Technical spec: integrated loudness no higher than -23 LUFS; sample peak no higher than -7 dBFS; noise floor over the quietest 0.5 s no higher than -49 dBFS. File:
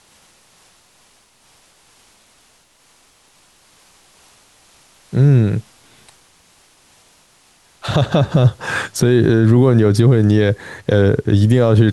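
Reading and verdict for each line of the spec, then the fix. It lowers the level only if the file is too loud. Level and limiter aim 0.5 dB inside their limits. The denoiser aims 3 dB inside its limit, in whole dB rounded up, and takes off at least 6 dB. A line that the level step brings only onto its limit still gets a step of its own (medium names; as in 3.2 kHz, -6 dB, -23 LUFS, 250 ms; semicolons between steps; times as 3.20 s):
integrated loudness -14.5 LUFS: fail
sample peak -3.0 dBFS: fail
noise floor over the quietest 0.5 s -54 dBFS: pass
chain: trim -9 dB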